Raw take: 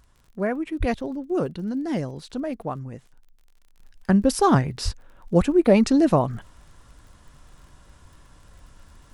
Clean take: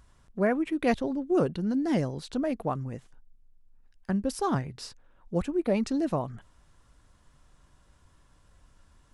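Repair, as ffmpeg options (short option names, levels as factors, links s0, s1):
-filter_complex "[0:a]adeclick=t=4,asplit=3[s0][s1][s2];[s0]afade=t=out:st=0.79:d=0.02[s3];[s1]highpass=f=140:w=0.5412,highpass=f=140:w=1.3066,afade=t=in:st=0.79:d=0.02,afade=t=out:st=0.91:d=0.02[s4];[s2]afade=t=in:st=0.91:d=0.02[s5];[s3][s4][s5]amix=inputs=3:normalize=0,asplit=3[s6][s7][s8];[s6]afade=t=out:st=4.84:d=0.02[s9];[s7]highpass=f=140:w=0.5412,highpass=f=140:w=1.3066,afade=t=in:st=4.84:d=0.02,afade=t=out:st=4.96:d=0.02[s10];[s8]afade=t=in:st=4.96:d=0.02[s11];[s9][s10][s11]amix=inputs=3:normalize=0,asetnsamples=n=441:p=0,asendcmd='3.8 volume volume -10dB',volume=1"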